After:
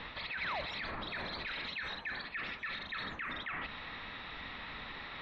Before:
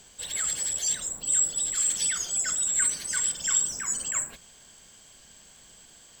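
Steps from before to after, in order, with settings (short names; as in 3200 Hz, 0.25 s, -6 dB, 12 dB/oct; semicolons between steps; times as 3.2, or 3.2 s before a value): steep low-pass 3300 Hz 48 dB/oct; band shelf 1300 Hz +8 dB; reverse; compressor 10:1, threshold -41 dBFS, peak gain reduction 19 dB; reverse; limiter -42.5 dBFS, peak gain reduction 10.5 dB; painted sound fall, 0.49–0.73, 440–2100 Hz -49 dBFS; varispeed +19%; gain +10.5 dB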